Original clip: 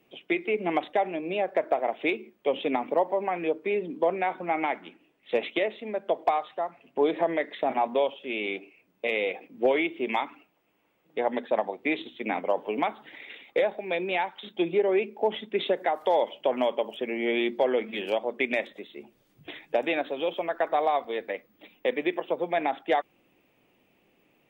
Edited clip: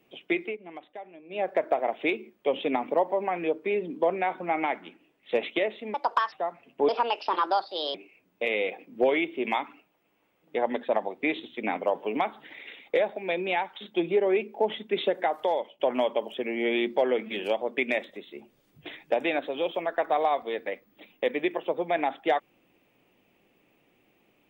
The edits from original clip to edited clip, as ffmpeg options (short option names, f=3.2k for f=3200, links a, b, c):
-filter_complex "[0:a]asplit=8[a][b][c][d][e][f][g][h];[a]atrim=end=0.57,asetpts=PTS-STARTPTS,afade=t=out:st=0.42:d=0.15:silence=0.149624[i];[b]atrim=start=0.57:end=1.29,asetpts=PTS-STARTPTS,volume=-16.5dB[j];[c]atrim=start=1.29:end=5.944,asetpts=PTS-STARTPTS,afade=t=in:d=0.15:silence=0.149624[k];[d]atrim=start=5.94:end=6.5,asetpts=PTS-STARTPTS,asetrate=64386,aresample=44100,atrim=end_sample=16915,asetpts=PTS-STARTPTS[l];[e]atrim=start=6.496:end=7.064[m];[f]atrim=start=7.06:end=8.57,asetpts=PTS-STARTPTS,asetrate=62622,aresample=44100,atrim=end_sample=46895,asetpts=PTS-STARTPTS[n];[g]atrim=start=8.566:end=16.42,asetpts=PTS-STARTPTS,afade=t=out:st=7.404:d=0.45:silence=0.16788[o];[h]atrim=start=16.42,asetpts=PTS-STARTPTS,afade=t=in:d=0.004:c=hsin:silence=0.16788[p];[i][j][k]concat=n=3:v=0:a=1[q];[q][l]acrossfade=d=0.004:c1=hsin:c2=hsin[r];[r][m]acrossfade=d=0.004:c1=hsin:c2=hsin[s];[s][n]acrossfade=d=0.004:c1=hsin:c2=hsin[t];[o][p]concat=n=2:v=0:a=1[u];[t][u]acrossfade=d=0.004:c1=hsin:c2=hsin"